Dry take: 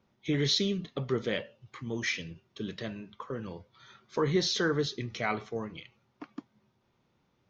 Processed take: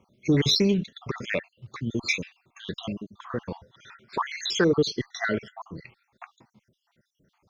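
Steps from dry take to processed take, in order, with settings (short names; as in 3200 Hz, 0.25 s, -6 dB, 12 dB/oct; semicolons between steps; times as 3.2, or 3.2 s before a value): random spectral dropouts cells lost 61%; added harmonics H 5 -30 dB, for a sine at -17.5 dBFS; gain +8 dB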